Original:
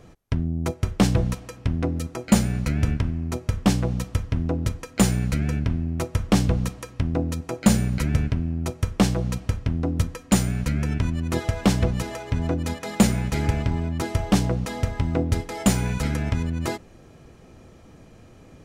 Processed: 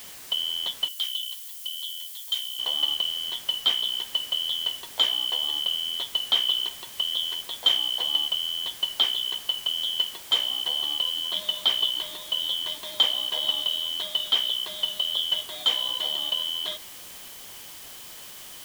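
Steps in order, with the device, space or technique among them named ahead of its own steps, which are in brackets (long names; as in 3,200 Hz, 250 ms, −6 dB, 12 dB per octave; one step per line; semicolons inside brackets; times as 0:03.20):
split-band scrambled radio (band-splitting scrambler in four parts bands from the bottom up 2413; band-pass filter 400–3,000 Hz; white noise bed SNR 15 dB)
notch filter 1,400 Hz, Q 16
0:00.88–0:02.59: first difference
level −1 dB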